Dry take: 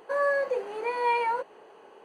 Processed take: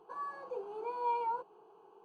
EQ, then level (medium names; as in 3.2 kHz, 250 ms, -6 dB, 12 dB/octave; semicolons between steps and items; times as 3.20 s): low-pass 1.6 kHz 6 dB/octave; static phaser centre 380 Hz, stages 8; -5.5 dB